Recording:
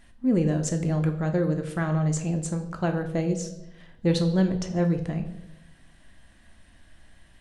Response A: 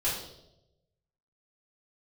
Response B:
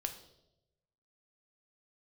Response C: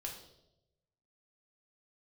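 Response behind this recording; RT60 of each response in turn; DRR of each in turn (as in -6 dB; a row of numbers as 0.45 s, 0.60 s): B; 0.90 s, 0.90 s, 0.90 s; -9.5 dB, 5.0 dB, -1.0 dB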